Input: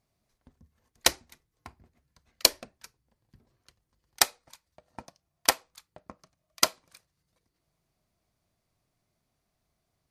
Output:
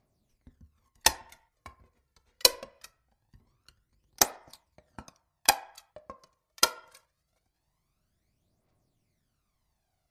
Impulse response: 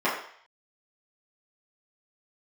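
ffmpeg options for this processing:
-filter_complex "[0:a]aphaser=in_gain=1:out_gain=1:delay=2.3:decay=0.62:speed=0.23:type=triangular,asplit=2[s0][s1];[1:a]atrim=start_sample=2205,lowpass=2900[s2];[s1][s2]afir=irnorm=-1:irlink=0,volume=0.0473[s3];[s0][s3]amix=inputs=2:normalize=0,volume=0.75"

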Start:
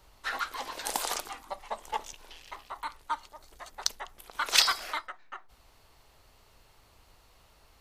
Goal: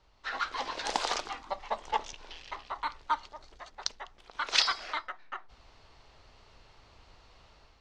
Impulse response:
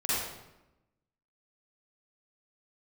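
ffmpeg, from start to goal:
-af "lowpass=f=5800:w=0.5412,lowpass=f=5800:w=1.3066,dynaudnorm=f=150:g=5:m=2.99,volume=0.473"

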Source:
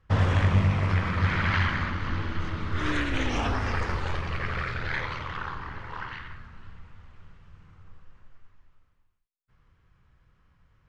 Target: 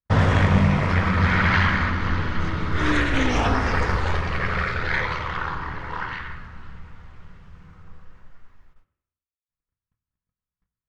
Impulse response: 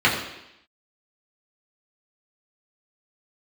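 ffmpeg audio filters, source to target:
-filter_complex "[0:a]agate=range=0.0126:threshold=0.00178:ratio=16:detection=peak,asplit=2[s0][s1];[1:a]atrim=start_sample=2205,highshelf=f=3700:g=-10[s2];[s1][s2]afir=irnorm=-1:irlink=0,volume=0.0501[s3];[s0][s3]amix=inputs=2:normalize=0,volume=2"

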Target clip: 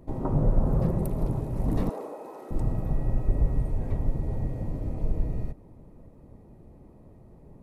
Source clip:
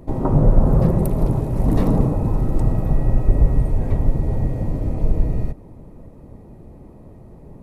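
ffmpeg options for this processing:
-filter_complex "[0:a]asettb=1/sr,asplit=3[s0][s1][s2];[s0]atrim=end=1.894[s3];[s1]atrim=start=1.89:end=2.51,asetpts=PTS-STARTPTS,afade=t=in:d=0.004:c=qsin,afade=t=out:st=0.616:d=0.004:c=qsin,highpass=f=390:w=0.5412,highpass=f=390:w=1.3066[s4];[s2]atrim=start=2.506[s5];[s3][s4]acrossfade=d=0.004:c1=hsin:c2=qsin[s6];[s6][s5]acrossfade=d=0.004:c1=qsin:c2=hsin,volume=0.355"

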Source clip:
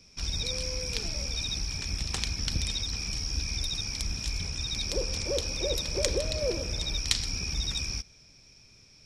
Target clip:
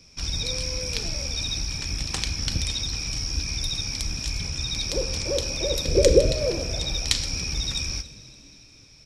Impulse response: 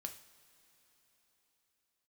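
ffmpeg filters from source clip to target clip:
-filter_complex "[0:a]asettb=1/sr,asplit=3[s0][s1][s2];[s0]atrim=end=5.854[s3];[s1]atrim=start=5.85:end=6.32,asetpts=PTS-STARTPTS,afade=t=in:d=0.004:c=qsin,afade=t=out:st=0.466:d=0.004:c=qsin,lowshelf=f=610:t=q:w=3:g=7[s4];[s2]atrim=start=6.316[s5];[s3][s4]acrossfade=d=0.004:c1=hsin:c2=qsin[s6];[s6][s5]acrossfade=d=0.004:c1=qsin:c2=hsin,asplit=4[s7][s8][s9][s10];[s8]adelay=283,afreqshift=76,volume=0.0944[s11];[s9]adelay=566,afreqshift=152,volume=0.0442[s12];[s10]adelay=849,afreqshift=228,volume=0.0209[s13];[s7][s11][s12][s13]amix=inputs=4:normalize=0,asplit=2[s14][s15];[1:a]atrim=start_sample=2205[s16];[s15][s16]afir=irnorm=-1:irlink=0,volume=1.68[s17];[s14][s17]amix=inputs=2:normalize=0,volume=0.75"

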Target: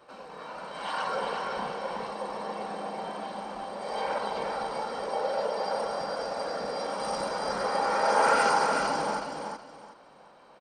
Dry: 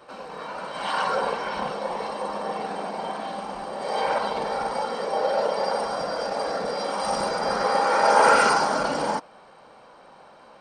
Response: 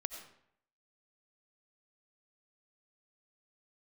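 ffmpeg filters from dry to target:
-af "aecho=1:1:371|742|1113:0.562|0.135|0.0324,volume=0.473"

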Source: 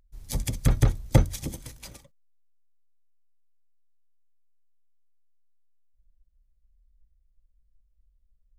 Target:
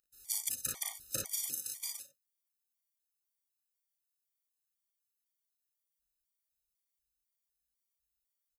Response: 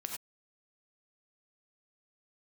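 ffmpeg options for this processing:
-filter_complex "[0:a]aderivative,acompressor=threshold=0.0126:ratio=2.5,asplit=2[s0][s1];[s1]aecho=0:1:37|57:0.631|0.596[s2];[s0][s2]amix=inputs=2:normalize=0,afftfilt=real='re*gt(sin(2*PI*2*pts/sr)*(1-2*mod(floor(b*sr/1024/610),2)),0)':imag='im*gt(sin(2*PI*2*pts/sr)*(1-2*mod(floor(b*sr/1024/610),2)),0)':win_size=1024:overlap=0.75,volume=2.24"

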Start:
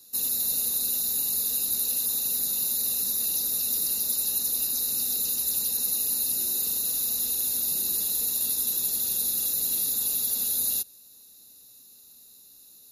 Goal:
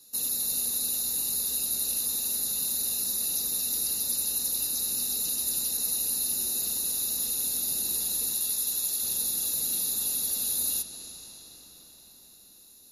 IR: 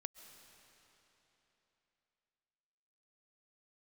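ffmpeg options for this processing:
-filter_complex "[0:a]asettb=1/sr,asplit=3[s0][s1][s2];[s0]atrim=end=8.354[s3];[s1]atrim=start=8.35:end=9.03,asetpts=PTS-STARTPTS,afade=t=in:d=0.004:c=qsin,afade=t=out:st=0.676:d=0.004:c=qsin,lowshelf=f=400:g=-11[s4];[s2]atrim=start=9.026[s5];[s3][s4]acrossfade=d=0.004:c1=hsin:c2=qsin[s6];[s6][s5]acrossfade=d=0.004:c1=qsin:c2=hsin[s7];[1:a]atrim=start_sample=2205,asetrate=22491,aresample=44100[s8];[s7][s8]afir=irnorm=-1:irlink=0"

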